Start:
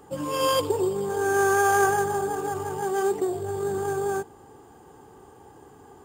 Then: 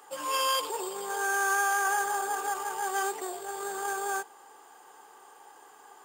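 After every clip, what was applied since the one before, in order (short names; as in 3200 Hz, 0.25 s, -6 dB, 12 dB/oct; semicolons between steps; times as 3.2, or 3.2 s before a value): limiter -18.5 dBFS, peak gain reduction 9 dB; HPF 950 Hz 12 dB/oct; gain +4 dB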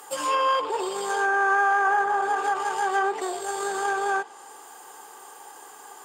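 high shelf 6600 Hz +9.5 dB; treble ducked by the level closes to 1700 Hz, closed at -23.5 dBFS; gain +7 dB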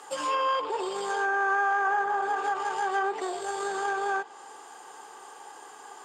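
LPF 6800 Hz 12 dB/oct; in parallel at -1 dB: compressor, threshold -31 dBFS, peak gain reduction 12 dB; on the sum: gain -6 dB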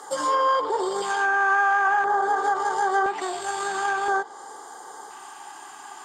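LFO notch square 0.49 Hz 480–2600 Hz; gain +6 dB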